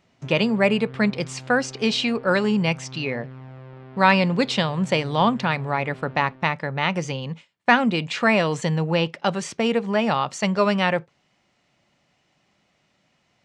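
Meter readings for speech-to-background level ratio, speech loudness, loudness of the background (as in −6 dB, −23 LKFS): 20.0 dB, −22.0 LKFS, −42.0 LKFS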